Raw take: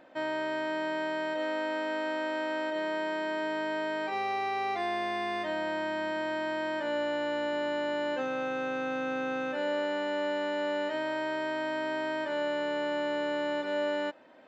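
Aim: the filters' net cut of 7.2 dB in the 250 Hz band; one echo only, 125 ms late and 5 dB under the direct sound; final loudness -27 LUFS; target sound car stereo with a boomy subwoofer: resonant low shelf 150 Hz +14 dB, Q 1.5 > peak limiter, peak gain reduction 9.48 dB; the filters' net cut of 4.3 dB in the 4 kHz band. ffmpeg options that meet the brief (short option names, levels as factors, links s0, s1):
-af "lowshelf=f=150:t=q:w=1.5:g=14,equalizer=f=250:t=o:g=-6,equalizer=f=4000:t=o:g=-6.5,aecho=1:1:125:0.562,volume=3.55,alimiter=limit=0.106:level=0:latency=1"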